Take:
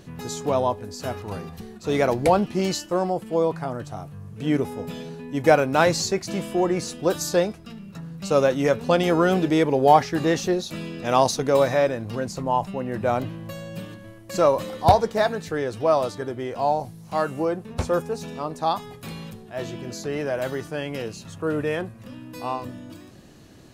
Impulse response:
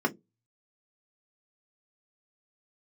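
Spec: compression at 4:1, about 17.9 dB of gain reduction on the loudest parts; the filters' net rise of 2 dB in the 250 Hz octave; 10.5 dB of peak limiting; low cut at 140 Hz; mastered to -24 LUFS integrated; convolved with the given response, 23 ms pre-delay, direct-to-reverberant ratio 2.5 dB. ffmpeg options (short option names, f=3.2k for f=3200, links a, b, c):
-filter_complex "[0:a]highpass=140,equalizer=f=250:t=o:g=3.5,acompressor=threshold=-32dB:ratio=4,alimiter=level_in=5dB:limit=-24dB:level=0:latency=1,volume=-5dB,asplit=2[a][b];[1:a]atrim=start_sample=2205,adelay=23[c];[b][c]afir=irnorm=-1:irlink=0,volume=-13dB[d];[a][d]amix=inputs=2:normalize=0,volume=11dB"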